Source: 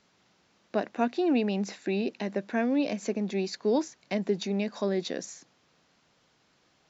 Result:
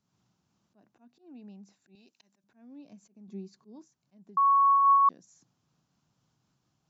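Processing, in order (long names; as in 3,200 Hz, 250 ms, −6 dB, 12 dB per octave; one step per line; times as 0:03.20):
octave-band graphic EQ 125/500/2,000/4,000 Hz +9/−10/−12/−6 dB
downward compressor 2 to 1, threshold −53 dBFS, peak gain reduction 16 dB
volume swells 170 ms
0:01.95–0:02.44: spectral tilt +4.5 dB per octave
0:03.28–0:03.86: hollow resonant body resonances 200/380/1,100 Hz, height 10 dB
0:04.37–0:05.09: beep over 1,110 Hz −12 dBFS
amplitude modulation by smooth noise, depth 55%
level −4 dB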